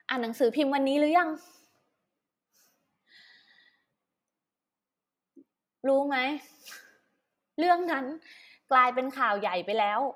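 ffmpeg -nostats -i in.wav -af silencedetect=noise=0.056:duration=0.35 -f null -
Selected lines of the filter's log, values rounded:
silence_start: 1.30
silence_end: 5.85 | silence_duration: 4.55
silence_start: 6.31
silence_end: 7.59 | silence_duration: 1.27
silence_start: 7.99
silence_end: 8.71 | silence_duration: 0.72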